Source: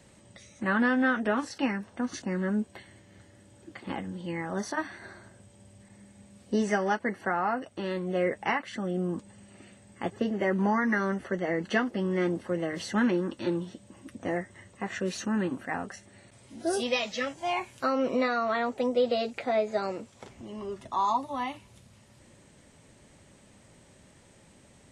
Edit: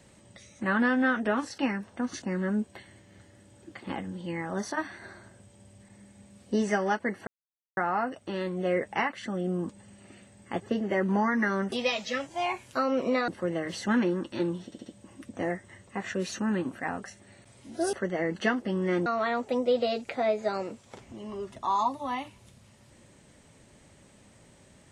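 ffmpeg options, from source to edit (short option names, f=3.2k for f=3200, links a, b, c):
-filter_complex "[0:a]asplit=9[a][b][c][d][e][f][g][h][i];[a]atrim=end=7.27,asetpts=PTS-STARTPTS,afade=t=out:st=7.266:d=0.004:c=hsin,apad=pad_dur=0.5[j];[b]atrim=start=7.27:end=11.222,asetpts=PTS-STARTPTS,afade=t=in:d=0.004:c=hsin[k];[c]atrim=start=16.788:end=18.352[l];[d]atrim=start=12.348:end=13.792[m];[e]atrim=start=13.718:end=13.792[n];[f]atrim=start=13.718:end=13.792[o];[g]atrim=start=13.718:end=16.792[p];[h]atrim=start=11.218:end=12.352[q];[i]atrim=start=18.348[r];[j][k]concat=n=2:v=0:a=1[s];[s][l]acrossfade=d=0.004:c1=hsin:c2=hsin[t];[t][m]acrossfade=d=0.004:c1=hsin:c2=hsin[u];[u][n]acrossfade=d=0.004:c1=hsin:c2=hsin[v];[v][o]acrossfade=d=0.004:c1=hsin:c2=hsin[w];[w][p]acrossfade=d=0.004:c1=hsin:c2=hsin[x];[x][q]acrossfade=d=0.004:c1=hsin:c2=hsin[y];[y][r]acrossfade=d=0.004:c1=hsin:c2=hsin"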